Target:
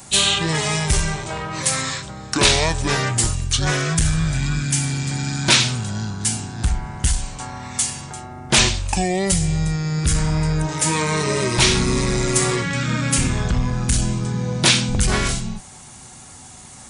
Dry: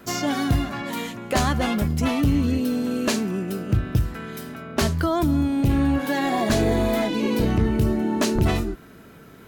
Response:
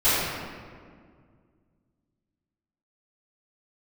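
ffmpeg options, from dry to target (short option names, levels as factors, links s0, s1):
-af "asetrate=24740,aresample=44100,crystalizer=i=9:c=0"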